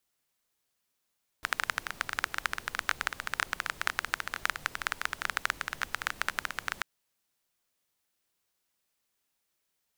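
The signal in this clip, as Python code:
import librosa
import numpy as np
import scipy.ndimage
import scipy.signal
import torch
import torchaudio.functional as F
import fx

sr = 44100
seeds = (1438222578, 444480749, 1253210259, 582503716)

y = fx.rain(sr, seeds[0], length_s=5.39, drops_per_s=15.0, hz=1500.0, bed_db=-15)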